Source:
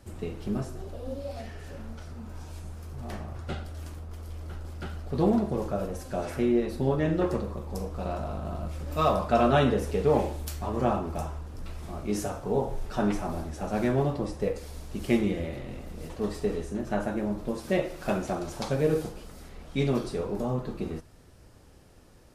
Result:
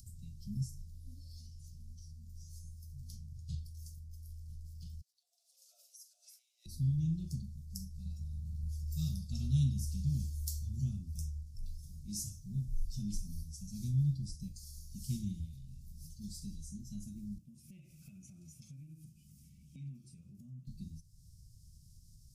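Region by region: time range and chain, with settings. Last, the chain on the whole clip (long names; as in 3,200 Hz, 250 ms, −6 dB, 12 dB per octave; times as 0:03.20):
0:05.01–0:06.66: downward compressor 5 to 1, threshold −35 dBFS + Chebyshev high-pass with heavy ripple 500 Hz, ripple 9 dB
0:17.38–0:20.67: high-pass filter 170 Hz + high shelf with overshoot 3,200 Hz −9.5 dB, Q 3 + downward compressor 3 to 1, threshold −32 dBFS
whole clip: noise reduction from a noise print of the clip's start 8 dB; elliptic band-stop filter 150–5,200 Hz, stop band 50 dB; upward compression, threshold −48 dBFS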